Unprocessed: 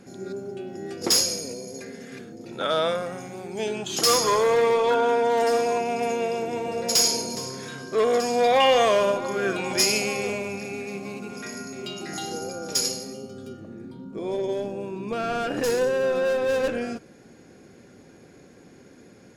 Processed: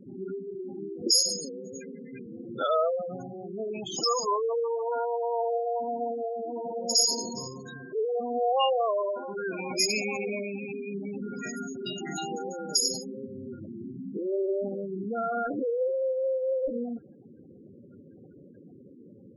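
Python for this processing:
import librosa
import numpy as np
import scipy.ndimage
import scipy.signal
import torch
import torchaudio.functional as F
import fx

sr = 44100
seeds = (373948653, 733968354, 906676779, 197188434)

y = fx.spec_gate(x, sr, threshold_db=-10, keep='strong')
y = fx.peak_eq(y, sr, hz=470.0, db=-3.5, octaves=0.77)
y = fx.rider(y, sr, range_db=5, speed_s=2.0)
y = y * 10.0 ** (-2.5 / 20.0)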